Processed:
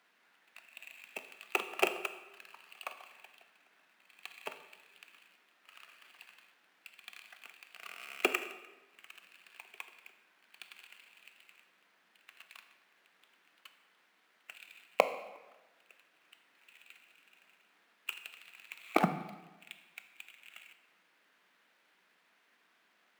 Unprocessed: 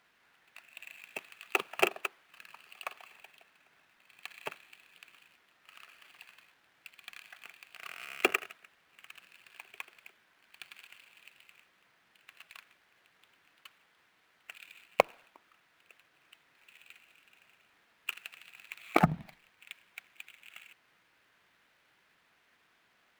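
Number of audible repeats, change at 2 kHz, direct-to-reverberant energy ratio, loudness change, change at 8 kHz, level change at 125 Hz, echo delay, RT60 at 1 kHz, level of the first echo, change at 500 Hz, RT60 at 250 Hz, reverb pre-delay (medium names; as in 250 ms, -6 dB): no echo, -2.5 dB, 9.0 dB, -3.0 dB, -1.5 dB, -7.5 dB, no echo, 1.1 s, no echo, -1.5 dB, 1.2 s, 15 ms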